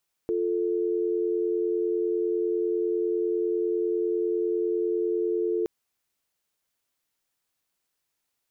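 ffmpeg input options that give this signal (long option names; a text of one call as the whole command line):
ffmpeg -f lavfi -i "aevalsrc='0.0501*(sin(2*PI*350*t)+sin(2*PI*440*t))':duration=5.37:sample_rate=44100" out.wav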